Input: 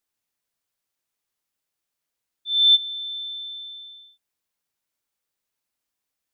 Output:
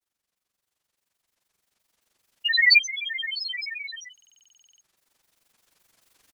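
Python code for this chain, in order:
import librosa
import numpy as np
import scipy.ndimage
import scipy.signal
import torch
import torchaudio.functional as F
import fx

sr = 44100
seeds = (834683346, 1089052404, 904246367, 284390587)

y = fx.recorder_agc(x, sr, target_db=-19.0, rise_db_per_s=6.6, max_gain_db=30)
y = fx.granulator(y, sr, seeds[0], grain_ms=59.0, per_s=23.0, spray_ms=32.0, spread_st=12)
y = fx.buffer_glitch(y, sr, at_s=(4.13,), block=2048, repeats=14)
y = F.gain(torch.from_numpy(y), 1.5).numpy()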